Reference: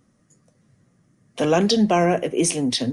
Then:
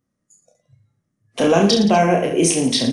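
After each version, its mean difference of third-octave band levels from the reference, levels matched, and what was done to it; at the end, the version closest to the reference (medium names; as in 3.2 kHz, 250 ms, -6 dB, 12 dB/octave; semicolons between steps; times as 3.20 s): 4.0 dB: spectral noise reduction 21 dB; in parallel at +2 dB: compression, threshold -25 dBFS, peak gain reduction 11 dB; on the sum: reverse bouncing-ball echo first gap 30 ms, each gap 1.25×, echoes 5; trim -1.5 dB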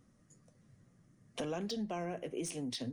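2.5 dB: bass shelf 80 Hz +8 dB; compression 4:1, threshold -32 dBFS, peak gain reduction 16 dB; slew-rate limiter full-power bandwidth 250 Hz; trim -6.5 dB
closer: second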